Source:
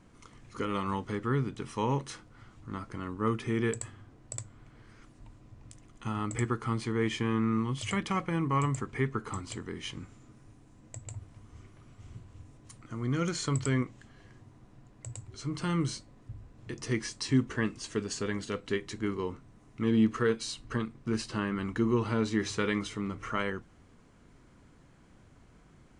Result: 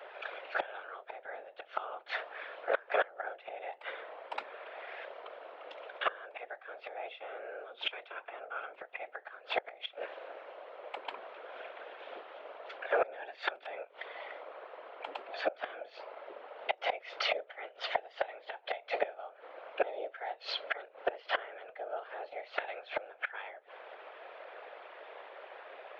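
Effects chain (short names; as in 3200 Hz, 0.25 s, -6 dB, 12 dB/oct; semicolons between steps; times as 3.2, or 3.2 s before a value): mistuned SSB +300 Hz 250–3200 Hz; flipped gate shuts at -31 dBFS, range -26 dB; whisperiser; gain +14.5 dB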